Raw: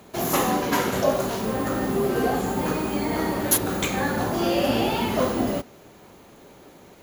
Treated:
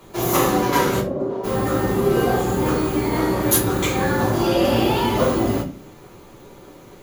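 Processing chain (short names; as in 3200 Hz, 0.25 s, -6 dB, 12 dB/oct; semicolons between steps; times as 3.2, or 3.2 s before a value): 0.99–1.43 band-pass 190 Hz -> 560 Hz, Q 1.5; reverb, pre-delay 3 ms, DRR -4 dB; gain -3 dB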